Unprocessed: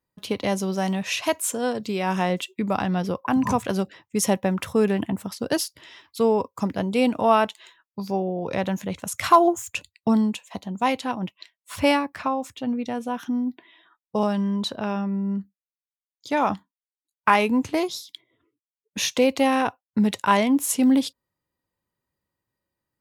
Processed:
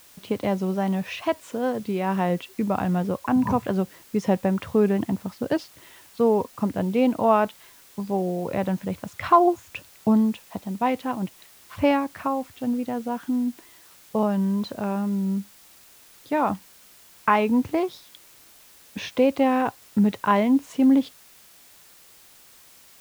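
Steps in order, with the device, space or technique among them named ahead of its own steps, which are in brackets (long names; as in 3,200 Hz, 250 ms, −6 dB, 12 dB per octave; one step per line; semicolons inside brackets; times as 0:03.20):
cassette deck with a dirty head (head-to-tape spacing loss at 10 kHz 30 dB; tape wow and flutter 47 cents; white noise bed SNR 27 dB)
level +1.5 dB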